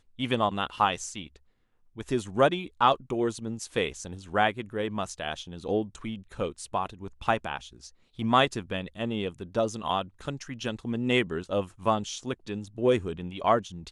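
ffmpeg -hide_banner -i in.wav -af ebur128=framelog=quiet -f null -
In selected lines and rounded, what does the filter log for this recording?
Integrated loudness:
  I:         -29.2 LUFS
  Threshold: -39.4 LUFS
Loudness range:
  LRA:         3.6 LU
  Threshold: -49.7 LUFS
  LRA low:   -31.6 LUFS
  LRA high:  -28.0 LUFS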